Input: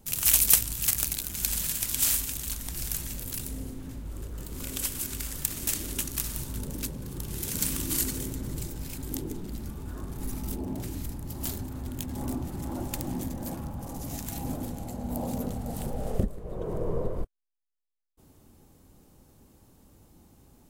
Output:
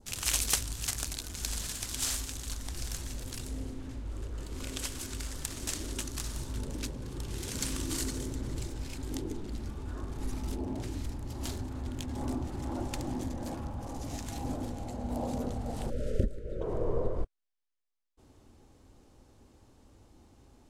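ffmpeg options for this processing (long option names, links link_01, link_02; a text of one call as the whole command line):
ffmpeg -i in.wav -filter_complex "[0:a]asettb=1/sr,asplit=3[link_01][link_02][link_03];[link_01]atrim=end=15.904[link_04];[link_02]atrim=start=15.9:end=16.61,asetpts=PTS-STARTPTS,afade=type=in:duration=0.004:curve=qsin,afade=type=out:start_time=0.706:duration=0.004:curve=qsin,asuperstop=centerf=900:order=20:qfactor=1.3[link_05];[link_03]atrim=start=16.606[link_06];[link_04][link_05]acrossfade=duration=0.004:curve1=hsin:curve2=qsin[link_07];[link_07][link_06]acrossfade=duration=0.004:curve1=qsin:curve2=hsin,adynamicequalizer=threshold=0.00282:dfrequency=2500:dqfactor=1.3:tfrequency=2500:tqfactor=1.3:attack=5:release=100:ratio=0.375:range=2.5:mode=cutabove:tftype=bell,lowpass=6500,equalizer=frequency=170:width=2.5:gain=-9" out.wav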